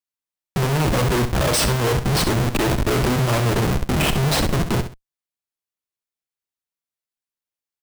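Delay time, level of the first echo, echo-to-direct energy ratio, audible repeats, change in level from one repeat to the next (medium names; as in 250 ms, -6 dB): 66 ms, -10.0 dB, -9.5 dB, 2, -11.5 dB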